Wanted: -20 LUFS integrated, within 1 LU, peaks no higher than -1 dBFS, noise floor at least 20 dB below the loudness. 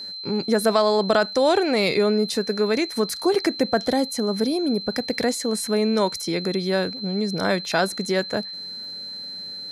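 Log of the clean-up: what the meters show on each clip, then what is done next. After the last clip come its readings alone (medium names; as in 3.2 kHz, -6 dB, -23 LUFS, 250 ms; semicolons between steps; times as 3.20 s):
tick rate 32 per s; steady tone 4.1 kHz; tone level -32 dBFS; loudness -23.0 LUFS; peak level -7.0 dBFS; loudness target -20.0 LUFS
-> de-click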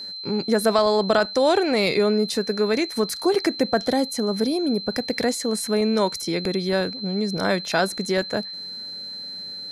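tick rate 0.10 per s; steady tone 4.1 kHz; tone level -32 dBFS
-> band-stop 4.1 kHz, Q 30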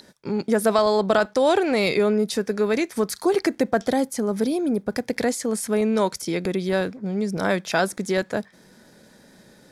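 steady tone not found; loudness -23.0 LUFS; peak level -7.0 dBFS; loudness target -20.0 LUFS
-> trim +3 dB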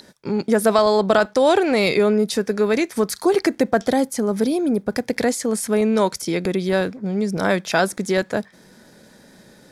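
loudness -20.0 LUFS; peak level -4.0 dBFS; noise floor -50 dBFS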